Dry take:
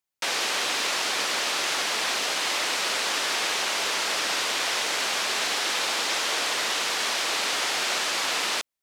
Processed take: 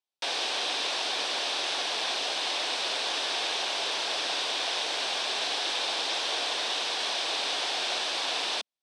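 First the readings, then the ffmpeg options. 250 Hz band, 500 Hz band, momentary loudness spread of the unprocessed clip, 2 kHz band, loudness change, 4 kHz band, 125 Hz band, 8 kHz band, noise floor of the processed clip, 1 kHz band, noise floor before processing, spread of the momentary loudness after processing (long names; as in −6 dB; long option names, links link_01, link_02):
−5.0 dB, −2.5 dB, 0 LU, −6.5 dB, −3.5 dB, −1.5 dB, can't be measured, −8.5 dB, −33 dBFS, −4.0 dB, −30 dBFS, 1 LU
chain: -af "highpass=180,equalizer=frequency=210:width_type=q:width=4:gain=-6,equalizer=frequency=720:width_type=q:width=4:gain=4,equalizer=frequency=1300:width_type=q:width=4:gain=-6,equalizer=frequency=2000:width_type=q:width=4:gain=-6,equalizer=frequency=3600:width_type=q:width=4:gain=5,equalizer=frequency=7000:width_type=q:width=4:gain=-9,lowpass=frequency=8300:width=0.5412,lowpass=frequency=8300:width=1.3066,volume=-3.5dB"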